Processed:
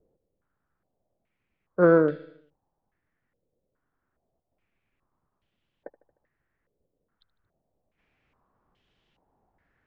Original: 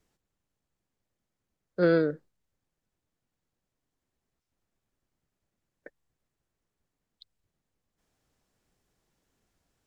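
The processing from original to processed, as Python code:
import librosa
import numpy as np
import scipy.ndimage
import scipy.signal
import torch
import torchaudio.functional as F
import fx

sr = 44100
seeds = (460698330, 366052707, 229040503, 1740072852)

p1 = x + fx.echo_feedback(x, sr, ms=76, feedback_pct=58, wet_db=-20, dry=0)
p2 = fx.filter_held_lowpass(p1, sr, hz=2.4, low_hz=510.0, high_hz=3100.0)
y = p2 * 10.0 ** (3.0 / 20.0)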